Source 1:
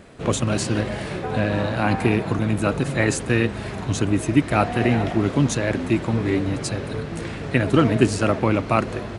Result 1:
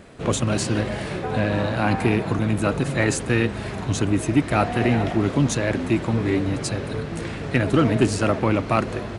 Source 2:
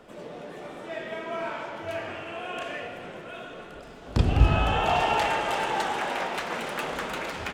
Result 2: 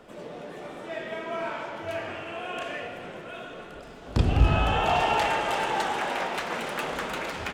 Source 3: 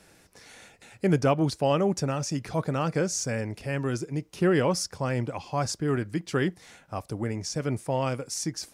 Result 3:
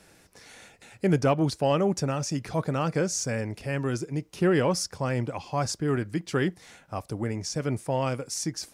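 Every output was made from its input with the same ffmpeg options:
-af "acontrast=62,volume=-6dB"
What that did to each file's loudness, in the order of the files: -0.5, 0.0, 0.0 LU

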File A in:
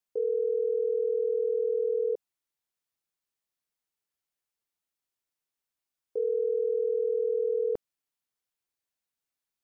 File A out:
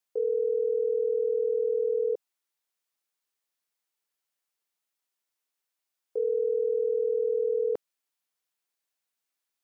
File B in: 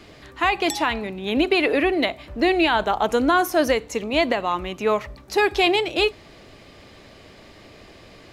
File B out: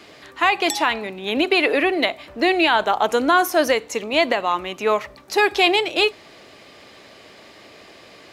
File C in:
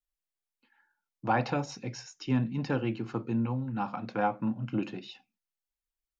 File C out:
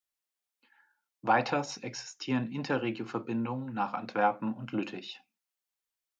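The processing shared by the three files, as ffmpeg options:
-af "highpass=f=410:p=1,volume=3.5dB"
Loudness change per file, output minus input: +1.0, +2.0, -0.5 LU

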